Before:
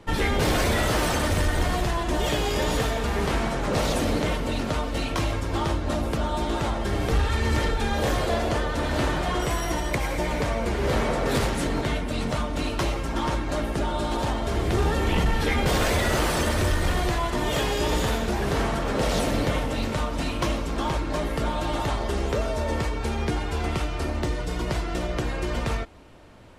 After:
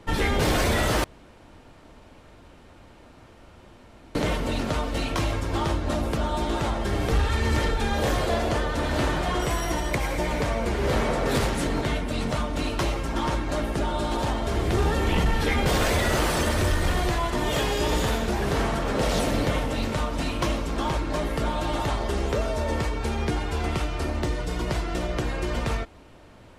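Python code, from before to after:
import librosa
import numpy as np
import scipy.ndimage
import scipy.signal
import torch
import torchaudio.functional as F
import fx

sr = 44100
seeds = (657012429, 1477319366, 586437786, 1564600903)

y = fx.edit(x, sr, fx.room_tone_fill(start_s=1.04, length_s=3.11), tone=tone)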